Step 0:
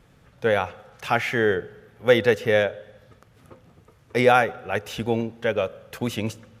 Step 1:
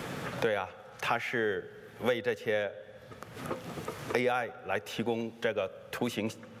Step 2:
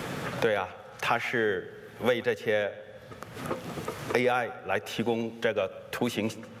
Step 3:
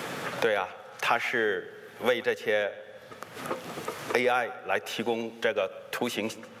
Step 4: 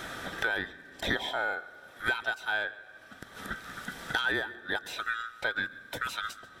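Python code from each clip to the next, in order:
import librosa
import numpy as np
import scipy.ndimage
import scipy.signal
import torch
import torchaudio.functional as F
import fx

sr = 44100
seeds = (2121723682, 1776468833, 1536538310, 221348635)

y1 = fx.highpass(x, sr, hz=180.0, slope=6)
y1 = fx.band_squash(y1, sr, depth_pct=100)
y1 = y1 * librosa.db_to_amplitude(-8.5)
y2 = y1 + 10.0 ** (-19.5 / 20.0) * np.pad(y1, (int(138 * sr / 1000.0), 0))[:len(y1)]
y2 = y2 * librosa.db_to_amplitude(3.5)
y3 = fx.highpass(y2, sr, hz=380.0, slope=6)
y3 = y3 * librosa.db_to_amplitude(2.0)
y4 = fx.band_swap(y3, sr, width_hz=1000)
y4 = y4 * librosa.db_to_amplitude(-4.5)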